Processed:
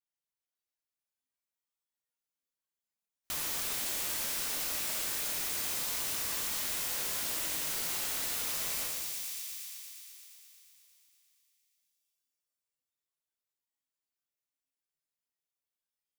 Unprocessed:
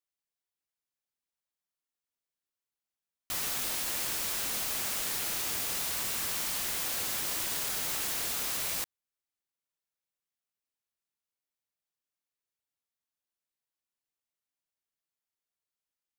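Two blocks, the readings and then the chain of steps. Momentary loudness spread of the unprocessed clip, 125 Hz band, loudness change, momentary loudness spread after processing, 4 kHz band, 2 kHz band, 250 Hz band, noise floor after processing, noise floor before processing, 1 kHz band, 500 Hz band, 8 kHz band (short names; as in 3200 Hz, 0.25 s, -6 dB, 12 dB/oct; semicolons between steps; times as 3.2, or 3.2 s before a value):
1 LU, -3.5 dB, -1.5 dB, 8 LU, -1.5 dB, -2.0 dB, -2.5 dB, under -85 dBFS, under -85 dBFS, -3.0 dB, -2.0 dB, -1.0 dB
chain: thin delay 0.117 s, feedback 80%, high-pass 3000 Hz, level -7 dB; plate-style reverb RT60 1.3 s, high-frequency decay 0.85×, DRR -3 dB; spectral noise reduction 9 dB; compressor 2.5:1, threshold -35 dBFS, peak gain reduction 7.5 dB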